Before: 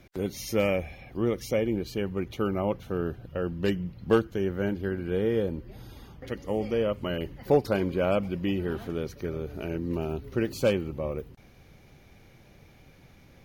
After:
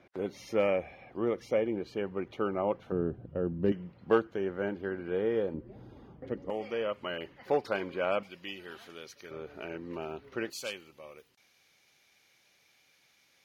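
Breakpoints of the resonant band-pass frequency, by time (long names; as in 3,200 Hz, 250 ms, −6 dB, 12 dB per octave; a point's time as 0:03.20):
resonant band-pass, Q 0.58
830 Hz
from 0:02.92 270 Hz
from 0:03.72 910 Hz
from 0:05.54 360 Hz
from 0:06.50 1,600 Hz
from 0:08.23 4,300 Hz
from 0:09.31 1,500 Hz
from 0:10.50 6,000 Hz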